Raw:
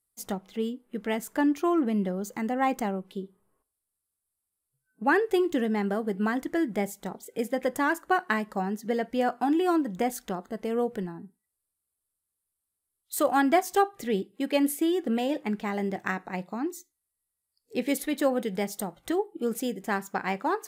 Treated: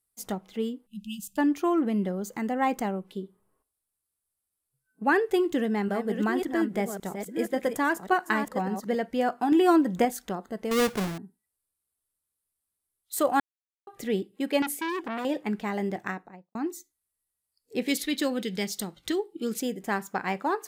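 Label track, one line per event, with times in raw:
0.860000	1.380000	time-frequency box erased 230–2,500 Hz
5.320000	8.950000	delay that plays each chunk backwards 560 ms, level −7.5 dB
9.520000	10.050000	clip gain +4.5 dB
10.710000	11.180000	each half-wave held at its own peak
13.400000	13.870000	silence
14.620000	15.250000	saturating transformer saturates under 1,900 Hz
15.910000	16.550000	fade out and dull
17.880000	19.610000	drawn EQ curve 360 Hz 0 dB, 690 Hz −9 dB, 4,300 Hz +10 dB, 10,000 Hz 0 dB

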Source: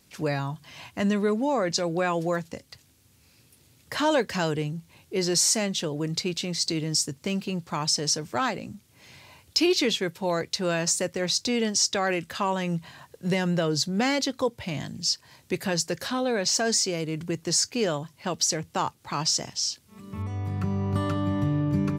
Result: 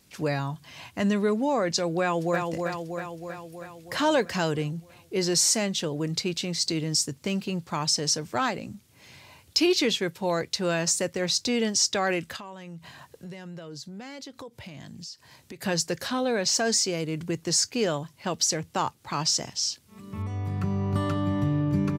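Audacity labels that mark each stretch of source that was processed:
2.010000	2.470000	delay throw 320 ms, feedback 65%, level −4 dB
12.360000	15.620000	downward compressor 5 to 1, threshold −39 dBFS

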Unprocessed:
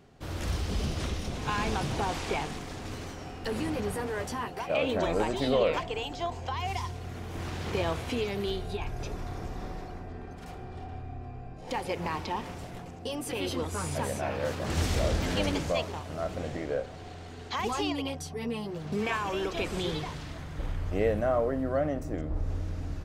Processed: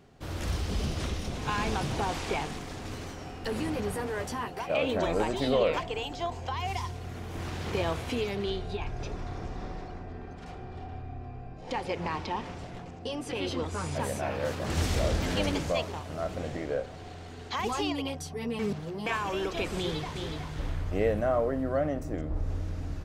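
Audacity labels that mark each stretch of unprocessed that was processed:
8.350000	14.000000	low-pass filter 6,500 Hz
18.590000	19.060000	reverse
19.780000	20.460000	delay throw 370 ms, feedback 15%, level −5.5 dB

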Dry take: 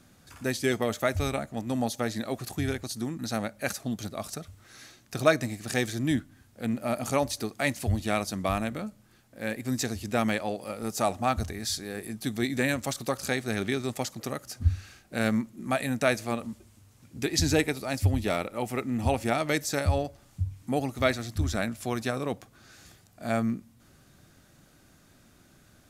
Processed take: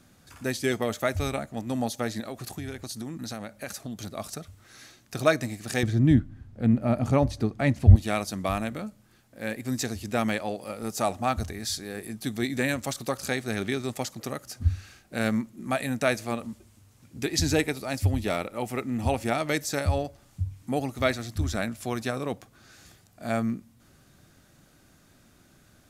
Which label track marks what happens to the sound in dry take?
2.200000	4.070000	downward compressor, threshold −31 dBFS
5.830000	7.960000	RIAA equalisation playback

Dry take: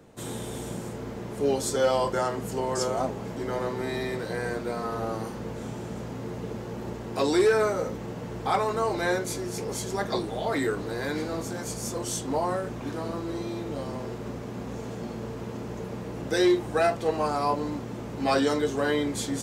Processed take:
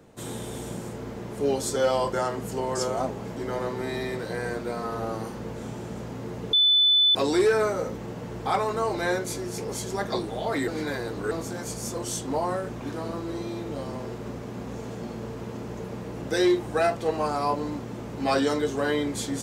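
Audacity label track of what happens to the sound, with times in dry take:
6.530000	7.150000	beep over 3,500 Hz −16 dBFS
10.680000	11.310000	reverse

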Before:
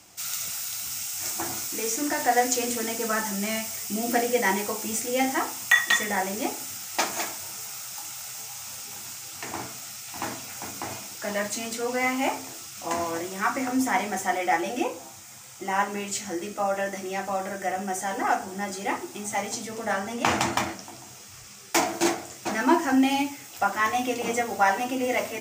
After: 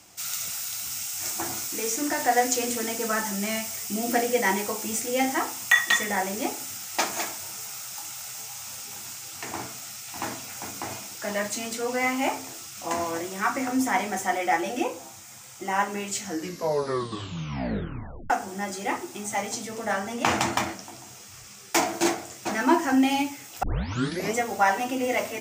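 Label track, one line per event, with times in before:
16.230000	16.230000	tape stop 2.07 s
23.630000	23.630000	tape start 0.73 s

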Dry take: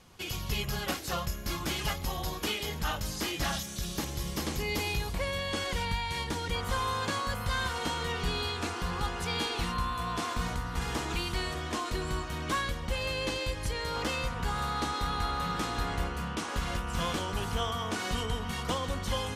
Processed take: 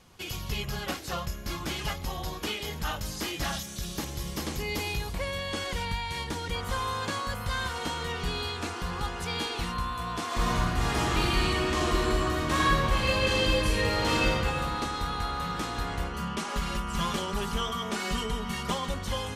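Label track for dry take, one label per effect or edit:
0.500000	2.650000	high-shelf EQ 8,300 Hz −5 dB
10.260000	14.300000	thrown reverb, RT60 2.4 s, DRR −6.5 dB
16.130000	18.940000	comb filter 5 ms, depth 76%

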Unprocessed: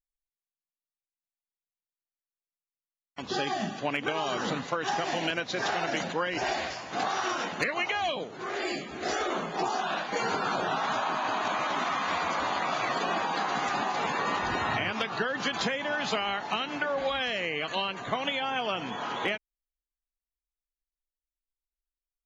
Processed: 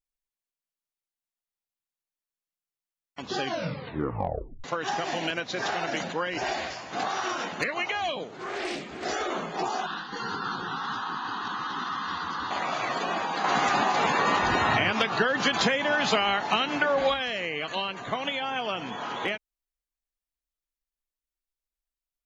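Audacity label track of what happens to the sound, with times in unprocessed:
3.400000	3.400000	tape stop 1.24 s
8.280000	9.050000	highs frequency-modulated by the lows depth 0.24 ms
9.860000	12.510000	phaser with its sweep stopped centre 2,300 Hz, stages 6
13.440000	17.140000	clip gain +5.5 dB

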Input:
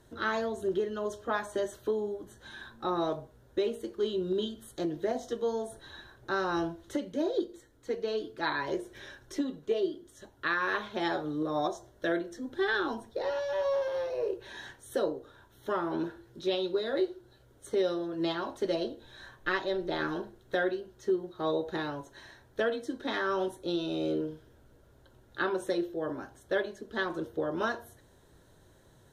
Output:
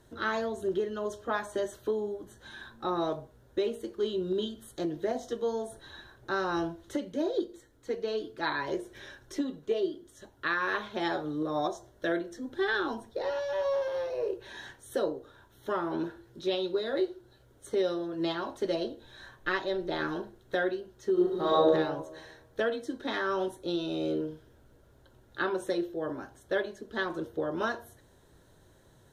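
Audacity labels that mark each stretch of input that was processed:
21.120000	21.600000	thrown reverb, RT60 1.1 s, DRR −7 dB

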